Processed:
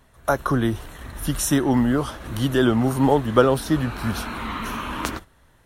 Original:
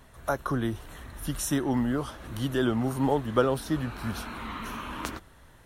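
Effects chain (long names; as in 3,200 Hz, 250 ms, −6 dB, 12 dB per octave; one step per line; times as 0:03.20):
noise gate −43 dBFS, range −10 dB
level +7.5 dB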